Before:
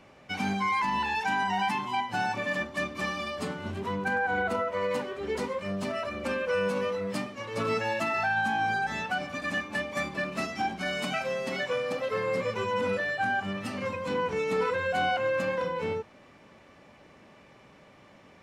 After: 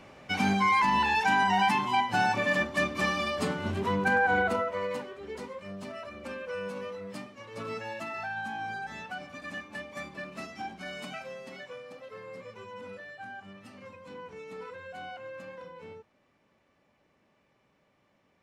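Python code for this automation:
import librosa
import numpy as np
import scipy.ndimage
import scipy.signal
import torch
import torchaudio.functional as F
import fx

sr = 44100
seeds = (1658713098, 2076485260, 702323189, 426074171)

y = fx.gain(x, sr, db=fx.line((4.32, 3.5), (5.25, -8.5), (11.03, -8.5), (11.89, -15.0)))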